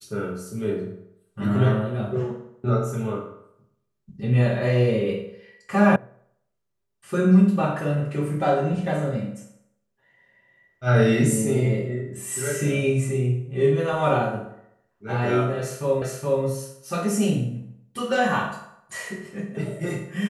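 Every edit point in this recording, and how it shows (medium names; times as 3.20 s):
5.96 s: sound stops dead
16.02 s: repeat of the last 0.42 s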